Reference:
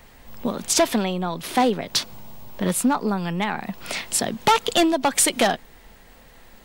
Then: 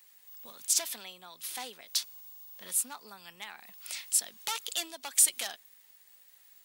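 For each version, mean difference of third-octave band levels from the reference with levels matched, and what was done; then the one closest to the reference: 11.0 dB: differentiator; gain -4.5 dB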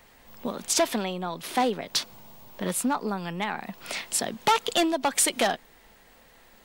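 1.5 dB: low shelf 180 Hz -8.5 dB; gain -4 dB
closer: second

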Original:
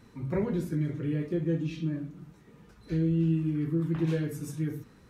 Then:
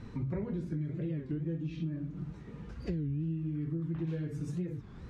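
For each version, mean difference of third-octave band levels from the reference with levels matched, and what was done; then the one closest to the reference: 5.0 dB: low shelf 150 Hz +11 dB; compressor 6:1, threshold -38 dBFS, peak gain reduction 18 dB; air absorption 85 m; record warp 33 1/3 rpm, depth 250 cents; gain +4.5 dB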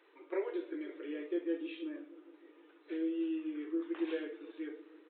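10.0 dB: bell 760 Hz -5.5 dB 2.8 oct; on a send: dark delay 0.157 s, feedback 73%, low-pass 470 Hz, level -14.5 dB; on the sum: downsampling 8000 Hz; brick-wall FIR high-pass 300 Hz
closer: first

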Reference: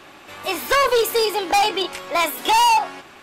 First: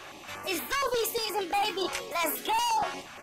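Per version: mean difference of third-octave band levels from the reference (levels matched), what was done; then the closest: 5.0 dB: bell 6100 Hz +5.5 dB 0.21 oct; reverse; compressor, threshold -26 dBFS, peak gain reduction 11 dB; reverse; echo 1.064 s -18 dB; stepped notch 8.5 Hz 240–5800 Hz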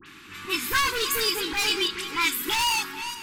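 8.5 dB: regenerating reverse delay 0.238 s, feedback 45%, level -12 dB; dispersion highs, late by 62 ms, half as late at 2300 Hz; hard clip -14 dBFS, distortion -14 dB; Butterworth band-stop 640 Hz, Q 0.69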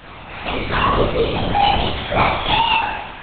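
13.5 dB: Bessel high-pass 180 Hz; limiter -18.5 dBFS, peak gain reduction 9 dB; on a send: flutter echo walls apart 3 m, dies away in 0.96 s; on the sum: LPC vocoder at 8 kHz whisper; gain +2.5 dB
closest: first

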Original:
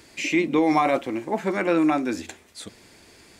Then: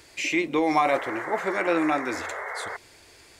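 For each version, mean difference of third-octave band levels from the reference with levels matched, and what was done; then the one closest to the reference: 4.0 dB: bell 210 Hz -12 dB 0.96 oct; painted sound noise, 0.88–2.77, 380–2200 Hz -34 dBFS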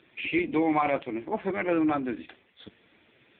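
6.0 dB: high shelf 2100 Hz +6.5 dB; gain -4.5 dB; AMR-NB 5.15 kbps 8000 Hz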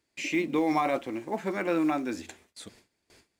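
2.5 dB: gate with hold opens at -39 dBFS; in parallel at -12 dB: short-mantissa float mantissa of 2-bit; on the sum: gain -8 dB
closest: third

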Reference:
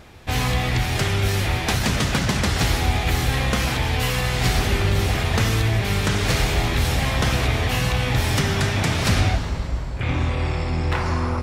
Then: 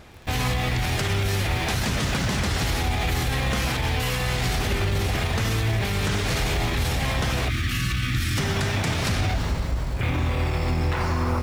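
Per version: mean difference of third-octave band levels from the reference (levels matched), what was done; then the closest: 2.0 dB: in parallel at -8.5 dB: bit-crush 6-bit; on the sum: limiter -14 dBFS, peak gain reduction 8 dB; spectral gain 7.5–8.38, 370–1100 Hz -22 dB; gain -1.5 dB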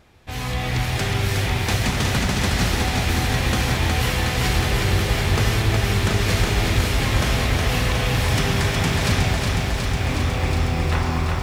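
3.0 dB: AGC gain up to 9 dB; lo-fi delay 0.365 s, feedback 80%, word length 7-bit, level -4 dB; gain -9 dB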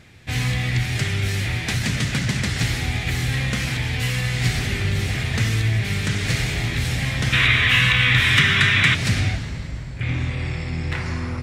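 5.0 dB: spectral gain 7.33–8.95, 980–4000 Hz +12 dB; graphic EQ 125/250/1000/2000/4000/8000 Hz +11/+4/-4/+10/+4/+7 dB; gain -9 dB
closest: first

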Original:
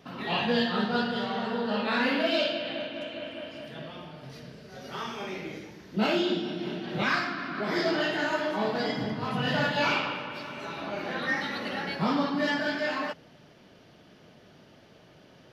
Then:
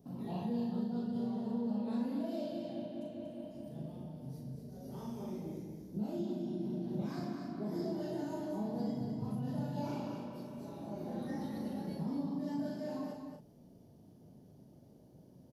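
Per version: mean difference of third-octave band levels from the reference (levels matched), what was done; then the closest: 8.5 dB: EQ curve 240 Hz 0 dB, 380 Hz -6 dB, 910 Hz -12 dB, 1300 Hz -26 dB, 2700 Hz -28 dB, 11000 Hz +1 dB; compressor, threshold -34 dBFS, peak gain reduction 11 dB; doubler 38 ms -4 dB; on a send: echo 0.236 s -7 dB; on the sum: gain -2.5 dB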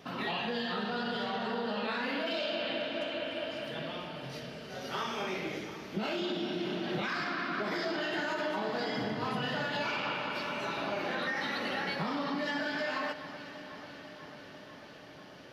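5.0 dB: low shelf 230 Hz -5.5 dB; limiter -23.5 dBFS, peak gain reduction 8 dB; compressor, threshold -34 dBFS, peak gain reduction 6 dB; on a send: echo with dull and thin repeats by turns 0.247 s, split 2000 Hz, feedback 85%, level -12 dB; on the sum: gain +3 dB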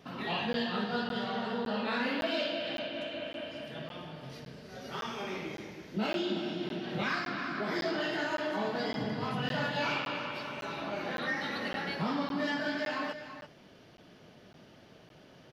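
2.5 dB: compressor 2:1, threshold -31 dBFS, peak gain reduction 6 dB; echo 0.333 s -11 dB; crackling interface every 0.56 s, samples 512, zero, from 0.53; gain -1.5 dB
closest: third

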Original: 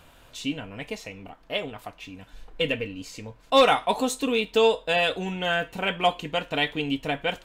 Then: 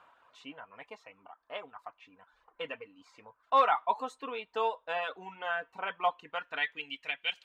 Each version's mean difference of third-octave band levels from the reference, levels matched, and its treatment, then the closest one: 9.0 dB: reverb removal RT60 0.66 s; reverse; upward compressor, threshold -45 dBFS; reverse; band-pass sweep 1100 Hz -> 2800 Hz, 6.2–7.27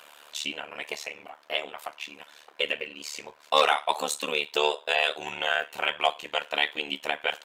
6.5 dB: HPF 680 Hz 12 dB/oct; in parallel at +3 dB: compressor, threshold -37 dBFS, peak gain reduction 19.5 dB; on the sum: AM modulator 74 Hz, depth 95%; gain +2 dB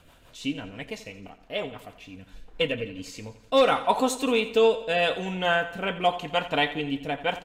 3.0 dB: dynamic EQ 960 Hz, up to +7 dB, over -36 dBFS, Q 0.99; rotary speaker horn 6 Hz, later 0.9 Hz, at 2.04; on a send: feedback echo 86 ms, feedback 53%, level -14.5 dB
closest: third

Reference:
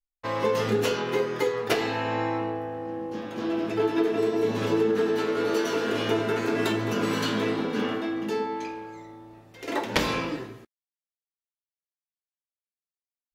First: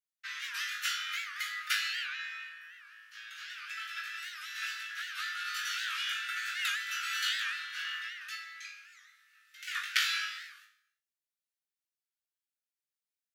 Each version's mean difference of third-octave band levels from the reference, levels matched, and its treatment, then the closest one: 22.5 dB: steep high-pass 1300 Hz 96 dB/oct; flutter echo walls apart 3.3 m, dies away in 0.31 s; non-linear reverb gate 0.36 s falling, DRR 11 dB; record warp 78 rpm, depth 160 cents; gain -2.5 dB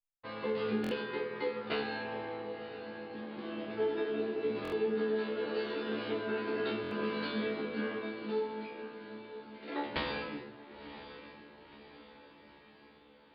6.5 dB: steep low-pass 4700 Hz 96 dB/oct; resonator 72 Hz, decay 0.4 s, harmonics all, mix 100%; on a send: diffused feedback echo 1.014 s, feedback 55%, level -12.5 dB; on the sum: stuck buffer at 0.82/4.63/6.82, samples 1024, times 3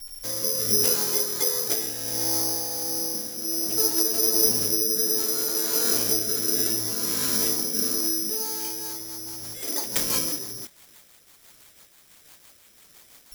13.5 dB: zero-crossing step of -31 dBFS; rotary speaker horn 0.65 Hz, later 6 Hz, at 8.31; tremolo triangle 1.4 Hz, depth 40%; careless resampling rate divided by 8×, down filtered, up zero stuff; gain -5.5 dB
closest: second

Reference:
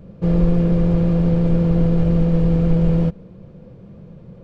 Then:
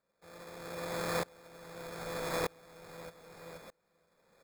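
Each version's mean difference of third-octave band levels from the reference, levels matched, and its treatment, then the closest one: 13.5 dB: HPF 1300 Hz 12 dB/oct; sample-and-hold 15×; feedback echo 0.48 s, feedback 38%, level -14 dB; dB-ramp tremolo swelling 0.81 Hz, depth 30 dB; gain +11 dB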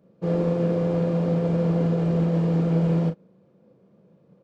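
3.5 dB: HPF 230 Hz 12 dB/oct; bell 2700 Hz -3.5 dB 1.6 oct; doubler 37 ms -4.5 dB; upward expander 1.5:1, over -44 dBFS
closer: second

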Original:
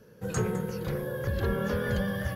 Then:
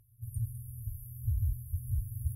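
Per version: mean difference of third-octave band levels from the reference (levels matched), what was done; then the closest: 25.0 dB: FFT band-reject 120–8900 Hz; gain +1 dB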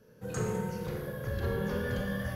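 2.0 dB: Schroeder reverb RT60 1.1 s, combs from 25 ms, DRR 1 dB; gain -6 dB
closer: second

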